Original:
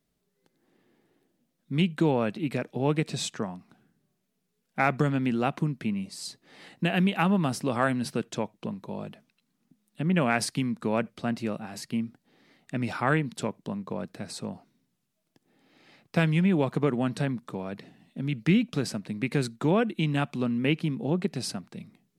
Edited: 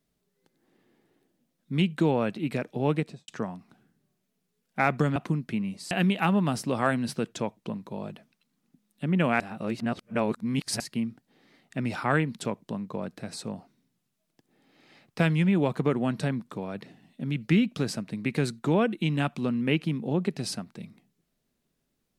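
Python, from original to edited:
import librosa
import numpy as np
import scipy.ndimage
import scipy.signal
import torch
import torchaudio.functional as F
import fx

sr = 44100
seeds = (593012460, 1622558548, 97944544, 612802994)

y = fx.studio_fade_out(x, sr, start_s=2.92, length_s=0.36)
y = fx.edit(y, sr, fx.cut(start_s=5.16, length_s=0.32),
    fx.cut(start_s=6.23, length_s=0.65),
    fx.reverse_span(start_s=10.37, length_s=1.4), tone=tone)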